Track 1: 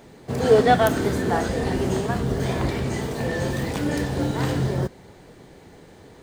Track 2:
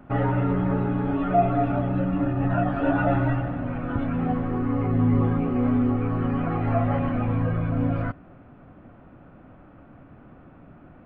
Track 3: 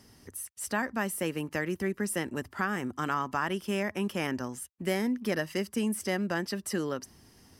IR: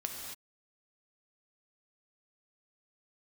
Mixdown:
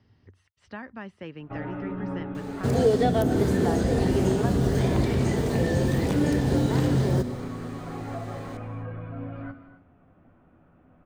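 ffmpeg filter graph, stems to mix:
-filter_complex "[0:a]adelay=2350,volume=2dB,asplit=2[link_01][link_02];[link_02]volume=-10.5dB[link_03];[1:a]acrossover=split=150|3000[link_04][link_05][link_06];[link_04]acompressor=threshold=-31dB:ratio=6[link_07];[link_07][link_05][link_06]amix=inputs=3:normalize=0,flanger=delay=9.8:depth=2.6:regen=54:speed=0.27:shape=triangular,adelay=1400,volume=-9.5dB,asplit=2[link_08][link_09];[link_09]volume=-4.5dB[link_10];[2:a]lowpass=frequency=3900:width=0.5412,lowpass=frequency=3900:width=1.3066,equalizer=frequency=100:width_type=o:width=0.91:gain=12,volume=-8.5dB[link_11];[3:a]atrim=start_sample=2205[link_12];[link_03][link_10]amix=inputs=2:normalize=0[link_13];[link_13][link_12]afir=irnorm=-1:irlink=0[link_14];[link_01][link_08][link_11][link_14]amix=inputs=4:normalize=0,acrossover=split=530|3200[link_15][link_16][link_17];[link_15]acompressor=threshold=-19dB:ratio=4[link_18];[link_16]acompressor=threshold=-36dB:ratio=4[link_19];[link_17]acompressor=threshold=-43dB:ratio=4[link_20];[link_18][link_19][link_20]amix=inputs=3:normalize=0"

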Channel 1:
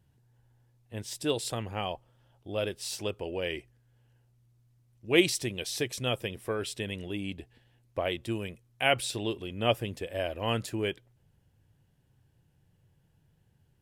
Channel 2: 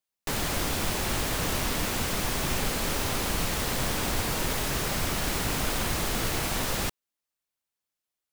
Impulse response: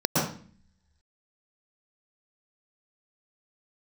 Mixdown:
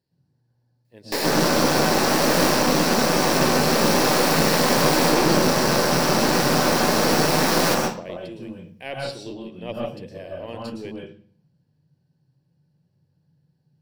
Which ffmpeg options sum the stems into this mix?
-filter_complex "[0:a]equalizer=frequency=4400:width_type=o:width=0.45:gain=10.5,volume=-15.5dB,asplit=3[link_01][link_02][link_03];[link_02]volume=-6dB[link_04];[1:a]highpass=310,adelay=850,volume=1.5dB,asplit=2[link_05][link_06];[link_06]volume=-6.5dB[link_07];[link_03]apad=whole_len=404514[link_08];[link_05][link_08]sidechaincompress=threshold=-48dB:ratio=8:attack=16:release=905[link_09];[2:a]atrim=start_sample=2205[link_10];[link_04][link_07]amix=inputs=2:normalize=0[link_11];[link_11][link_10]afir=irnorm=-1:irlink=0[link_12];[link_01][link_09][link_12]amix=inputs=3:normalize=0,aeval=exprs='0.596*(cos(1*acos(clip(val(0)/0.596,-1,1)))-cos(1*PI/2))+0.0596*(cos(6*acos(clip(val(0)/0.596,-1,1)))-cos(6*PI/2))':channel_layout=same"

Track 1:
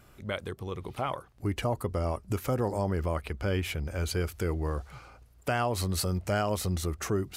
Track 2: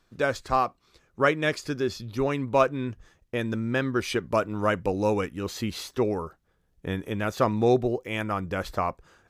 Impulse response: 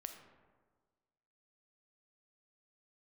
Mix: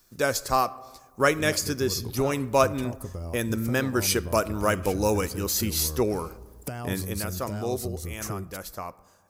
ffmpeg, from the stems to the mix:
-filter_complex "[0:a]lowshelf=frequency=420:gain=10.5,acompressor=threshold=-32dB:ratio=6,adelay=1200,volume=-1dB[link_01];[1:a]highshelf=frequency=8000:gain=10,volume=-2dB,afade=type=out:start_time=6.92:duration=0.39:silence=0.334965,asplit=2[link_02][link_03];[link_03]volume=-5.5dB[link_04];[2:a]atrim=start_sample=2205[link_05];[link_04][link_05]afir=irnorm=-1:irlink=0[link_06];[link_01][link_02][link_06]amix=inputs=3:normalize=0,aexciter=amount=3.2:drive=4.9:freq=4700"

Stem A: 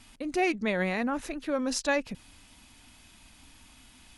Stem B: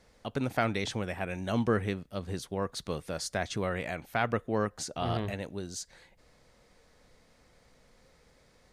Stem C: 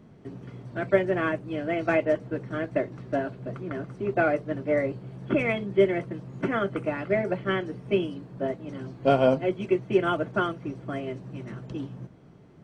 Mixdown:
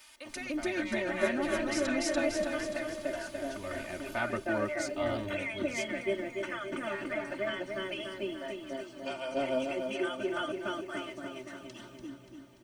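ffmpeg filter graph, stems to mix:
ffmpeg -i stem1.wav -i stem2.wav -i stem3.wav -filter_complex "[0:a]acompressor=threshold=-29dB:ratio=6,volume=-1dB,asplit=2[link_01][link_02];[link_02]volume=-3.5dB[link_03];[1:a]volume=-6.5dB,afade=type=in:start_time=3.47:duration=0.55:silence=0.266073[link_04];[2:a]aemphasis=mode=production:type=75fm,volume=-5dB,asplit=2[link_05][link_06];[link_06]volume=-8.5dB[link_07];[link_01][link_05]amix=inputs=2:normalize=0,highpass=1000,acompressor=threshold=-38dB:ratio=4,volume=0dB[link_08];[link_03][link_07]amix=inputs=2:normalize=0,aecho=0:1:290|580|870|1160|1450|1740|2030|2320:1|0.53|0.281|0.149|0.0789|0.0418|0.0222|0.0117[link_09];[link_04][link_08][link_09]amix=inputs=3:normalize=0,aecho=1:1:3.3:0.85" out.wav

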